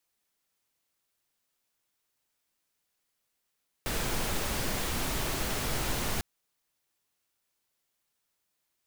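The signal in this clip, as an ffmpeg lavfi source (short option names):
-f lavfi -i "anoisesrc=c=pink:a=0.145:d=2.35:r=44100:seed=1"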